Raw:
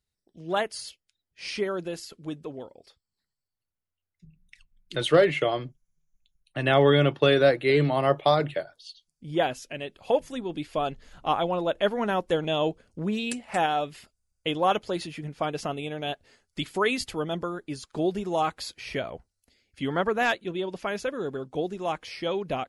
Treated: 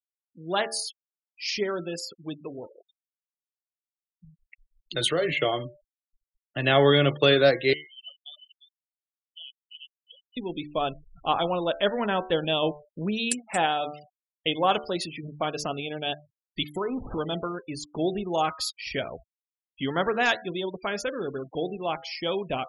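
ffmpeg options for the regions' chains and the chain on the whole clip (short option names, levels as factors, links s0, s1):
-filter_complex "[0:a]asettb=1/sr,asplit=3[s0][s1][s2];[s0]atrim=end=1.644[s3];[s1]atrim=start=1.64:end=5.33,asetpts=PTS-STARTPTS,afade=t=in:d=0.004:c=qsin,afade=t=out:st=3.686:d=0.004:c=qsin,asplit=2[s4][s5];[s5]adelay=18,volume=0.224[s6];[s4][s6]amix=inputs=2:normalize=0,atrim=end_sample=162729,acompressor=threshold=0.0794:ratio=4:attack=3.2:release=140:knee=1:detection=peak[s7];[s2]atrim=start=5.326[s8];[s3][s7]acrossfade=d=0.004:c1=hsin:c2=qsin[s9];[s9][s8]acrossfade=d=0.004:c1=qsin:c2=hsin,asettb=1/sr,asplit=3[s10][s11][s12];[s10]atrim=end=7.734[s13];[s11]atrim=start=7.73:end=10.37,asetpts=PTS-STARTPTS,afade=t=in:d=0.004:c=qsin,afade=t=out:st=2.636:d=0.004:c=qsin,acrusher=bits=8:mode=log:mix=0:aa=0.000001,bandpass=f=3000:t=q:w=18,aecho=1:1:352:0.355,atrim=end_sample=116424[s14];[s12]atrim=start=10.366[s15];[s13][s14]acrossfade=d=0.004:c1=hsin:c2=qsin[s16];[s16][s15]acrossfade=d=0.004:c1=qsin:c2=hsin,asettb=1/sr,asplit=3[s17][s18][s19];[s17]atrim=end=16.774[s20];[s18]atrim=start=16.77:end=17.18,asetpts=PTS-STARTPTS,afade=t=in:d=0.004:c=qsin,afade=t=out:st=0.406:d=0.004:c=qsin,aeval=exprs='val(0)+0.5*0.0447*sgn(val(0))':c=same,lowpass=f=1200:w=0.5412,lowpass=f=1200:w=1.3066,acompressor=threshold=0.0398:ratio=2.5:attack=3.2:release=140:knee=1:detection=peak[s21];[s19]atrim=start=17.176[s22];[s20][s21]acrossfade=d=0.004:c1=hsin:c2=qsin[s23];[s23][s22]acrossfade=d=0.004:c1=qsin:c2=hsin,bandreject=f=74.11:t=h:w=4,bandreject=f=148.22:t=h:w=4,bandreject=f=222.33:t=h:w=4,bandreject=f=296.44:t=h:w=4,bandreject=f=370.55:t=h:w=4,bandreject=f=444.66:t=h:w=4,bandreject=f=518.77:t=h:w=4,bandreject=f=592.88:t=h:w=4,bandreject=f=666.99:t=h:w=4,bandreject=f=741.1:t=h:w=4,bandreject=f=815.21:t=h:w=4,bandreject=f=889.32:t=h:w=4,bandreject=f=963.43:t=h:w=4,bandreject=f=1037.54:t=h:w=4,bandreject=f=1111.65:t=h:w=4,bandreject=f=1185.76:t=h:w=4,bandreject=f=1259.87:t=h:w=4,bandreject=f=1333.98:t=h:w=4,bandreject=f=1408.09:t=h:w=4,bandreject=f=1482.2:t=h:w=4,bandreject=f=1556.31:t=h:w=4,bandreject=f=1630.42:t=h:w=4,bandreject=f=1704.53:t=h:w=4,bandreject=f=1778.64:t=h:w=4,bandreject=f=1852.75:t=h:w=4,bandreject=f=1926.86:t=h:w=4,bandreject=f=2000.97:t=h:w=4,bandreject=f=2075.08:t=h:w=4,bandreject=f=2149.19:t=h:w=4,bandreject=f=2223.3:t=h:w=4,afftfilt=real='re*gte(hypot(re,im),0.0112)':imag='im*gte(hypot(re,im),0.0112)':win_size=1024:overlap=0.75,highshelf=f=3900:g=11"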